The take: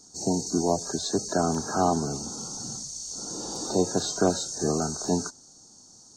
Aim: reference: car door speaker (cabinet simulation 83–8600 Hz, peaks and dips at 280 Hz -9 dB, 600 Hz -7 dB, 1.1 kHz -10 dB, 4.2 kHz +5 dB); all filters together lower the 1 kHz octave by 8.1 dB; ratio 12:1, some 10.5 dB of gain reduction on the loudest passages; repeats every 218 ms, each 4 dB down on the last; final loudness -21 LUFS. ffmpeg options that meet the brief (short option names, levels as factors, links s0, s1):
-af "equalizer=f=1000:t=o:g=-7.5,acompressor=threshold=0.0316:ratio=12,highpass=83,equalizer=f=280:t=q:w=4:g=-9,equalizer=f=600:t=q:w=4:g=-7,equalizer=f=1100:t=q:w=4:g=-10,equalizer=f=4200:t=q:w=4:g=5,lowpass=f=8600:w=0.5412,lowpass=f=8600:w=1.3066,aecho=1:1:218|436|654|872|1090|1308|1526|1744|1962:0.631|0.398|0.25|0.158|0.0994|0.0626|0.0394|0.0249|0.0157,volume=3.98"